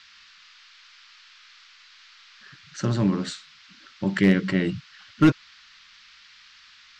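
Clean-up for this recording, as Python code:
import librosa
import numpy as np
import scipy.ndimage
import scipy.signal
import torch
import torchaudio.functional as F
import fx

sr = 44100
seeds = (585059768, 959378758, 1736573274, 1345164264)

y = fx.fix_declip(x, sr, threshold_db=-9.0)
y = fx.noise_reduce(y, sr, print_start_s=1.51, print_end_s=2.01, reduce_db=19.0)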